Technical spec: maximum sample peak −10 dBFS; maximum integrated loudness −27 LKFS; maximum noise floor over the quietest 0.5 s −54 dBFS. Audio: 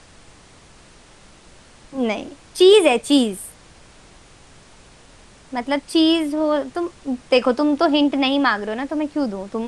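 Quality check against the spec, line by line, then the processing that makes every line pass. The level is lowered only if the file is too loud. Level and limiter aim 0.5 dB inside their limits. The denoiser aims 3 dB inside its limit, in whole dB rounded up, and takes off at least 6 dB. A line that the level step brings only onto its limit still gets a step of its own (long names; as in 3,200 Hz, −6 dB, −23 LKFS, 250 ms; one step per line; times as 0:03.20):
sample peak −3.0 dBFS: out of spec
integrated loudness −19.0 LKFS: out of spec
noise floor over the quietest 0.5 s −47 dBFS: out of spec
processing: level −8.5 dB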